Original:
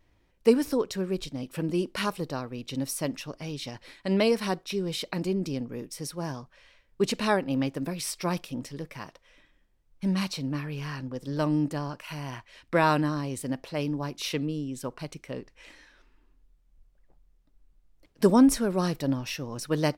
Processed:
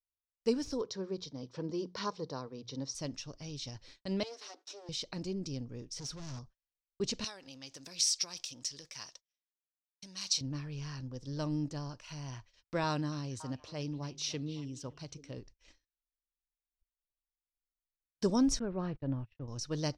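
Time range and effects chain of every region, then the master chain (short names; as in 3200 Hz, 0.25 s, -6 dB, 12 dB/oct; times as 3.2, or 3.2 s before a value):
0.81–2.95 speaker cabinet 140–5700 Hz, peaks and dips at 460 Hz +8 dB, 1000 Hz +8 dB, 2700 Hz -8 dB + notches 60/120/180 Hz
4.23–4.89 minimum comb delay 6.8 ms + steep high-pass 260 Hz 72 dB/oct + compressor 2:1, threshold -42 dBFS
5.96–6.39 sample leveller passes 2 + overloaded stage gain 35 dB
7.24–10.41 compressor 16:1, threshold -31 dBFS + tilt +4.5 dB/oct
12.84–15.38 HPF 60 Hz + delay with a stepping band-pass 0.279 s, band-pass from 2600 Hz, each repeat -1.4 oct, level -11 dB
18.59–19.48 LPF 2500 Hz 24 dB/oct + gate -37 dBFS, range -34 dB
whole clip: gate -49 dBFS, range -40 dB; EQ curve 110 Hz 0 dB, 170 Hz -9 dB, 2200 Hz -13 dB, 6000 Hz +1 dB, 12000 Hz -28 dB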